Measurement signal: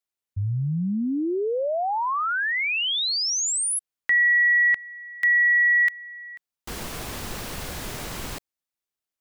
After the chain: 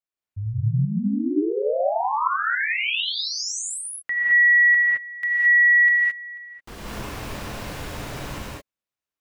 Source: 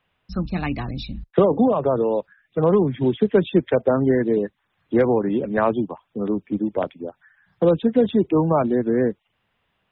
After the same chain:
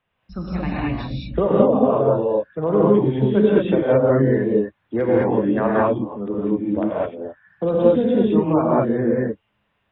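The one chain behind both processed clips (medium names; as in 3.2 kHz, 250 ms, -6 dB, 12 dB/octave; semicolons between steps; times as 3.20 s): treble shelf 4.5 kHz -9.5 dB; gated-style reverb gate 240 ms rising, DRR -6 dB; trim -4.5 dB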